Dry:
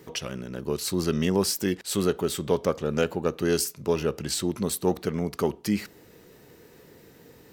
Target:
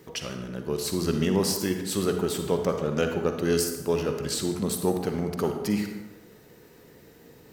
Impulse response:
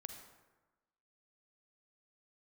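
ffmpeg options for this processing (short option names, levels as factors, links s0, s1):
-filter_complex "[1:a]atrim=start_sample=2205[s0];[0:a][s0]afir=irnorm=-1:irlink=0,volume=1.58"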